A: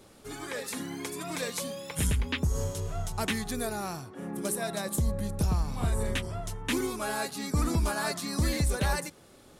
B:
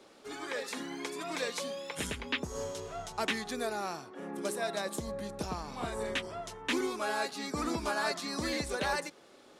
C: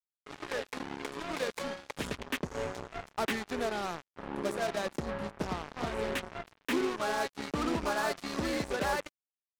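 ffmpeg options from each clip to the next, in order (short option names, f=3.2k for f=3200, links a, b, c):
-filter_complex "[0:a]acrossover=split=240 6800:gain=0.112 1 0.2[a][b][c];[a][b][c]amix=inputs=3:normalize=0"
-af "lowpass=f=1.5k:p=1,acrusher=bits=5:mix=0:aa=0.5,volume=2.5dB"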